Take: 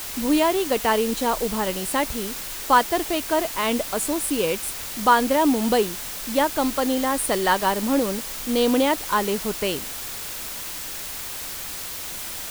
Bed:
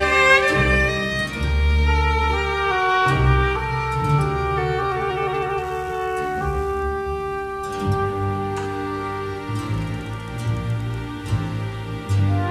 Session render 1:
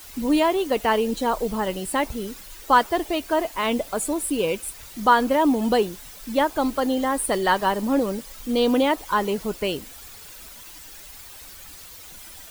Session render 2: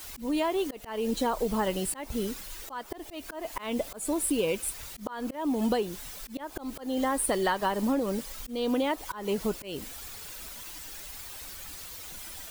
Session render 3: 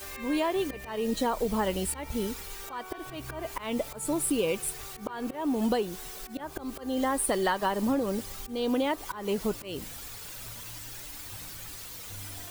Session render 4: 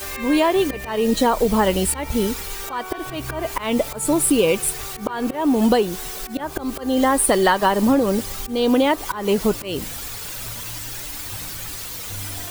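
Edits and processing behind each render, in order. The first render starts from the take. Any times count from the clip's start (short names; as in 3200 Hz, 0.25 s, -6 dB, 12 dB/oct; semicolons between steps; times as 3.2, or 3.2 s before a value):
denoiser 12 dB, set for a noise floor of -33 dBFS
compressor 16:1, threshold -23 dBFS, peak gain reduction 13 dB; auto swell 0.205 s
add bed -27.5 dB
gain +10.5 dB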